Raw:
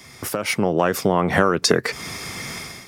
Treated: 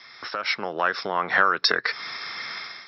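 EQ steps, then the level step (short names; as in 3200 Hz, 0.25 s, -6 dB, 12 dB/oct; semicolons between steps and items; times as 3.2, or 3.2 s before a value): HPF 1200 Hz 6 dB/oct; rippled Chebyshev low-pass 5500 Hz, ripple 9 dB; +6.0 dB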